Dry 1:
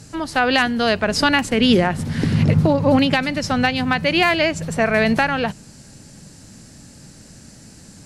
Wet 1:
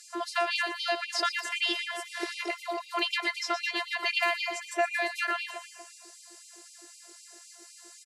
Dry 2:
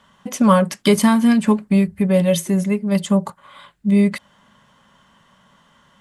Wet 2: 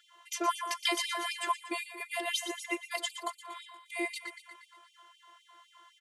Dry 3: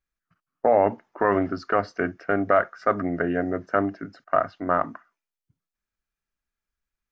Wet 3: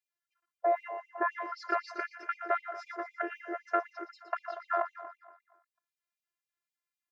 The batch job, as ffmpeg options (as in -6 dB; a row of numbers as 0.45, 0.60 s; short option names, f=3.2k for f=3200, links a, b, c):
-filter_complex "[0:a]afftfilt=real='hypot(re,im)*cos(PI*b)':imag='0':win_size=512:overlap=0.75,acrossover=split=86|600|5400[a][b][c][d];[a]acompressor=threshold=-43dB:ratio=4[e];[b]acompressor=threshold=-35dB:ratio=4[f];[c]acompressor=threshold=-25dB:ratio=4[g];[d]acompressor=threshold=-43dB:ratio=4[h];[e][f][g][h]amix=inputs=4:normalize=0,aecho=1:1:118|236|354|472|590|708|826:0.299|0.17|0.097|0.0553|0.0315|0.018|0.0102,afftfilt=real='re*gte(b*sr/1024,300*pow(2300/300,0.5+0.5*sin(2*PI*3.9*pts/sr)))':imag='im*gte(b*sr/1024,300*pow(2300/300,0.5+0.5*sin(2*PI*3.9*pts/sr)))':win_size=1024:overlap=0.75"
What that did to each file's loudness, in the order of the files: -12.0, -17.0, -10.5 LU